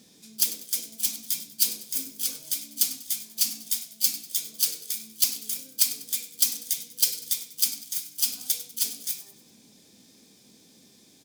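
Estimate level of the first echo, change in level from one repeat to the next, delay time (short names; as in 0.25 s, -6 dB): -15.0 dB, -7.5 dB, 97 ms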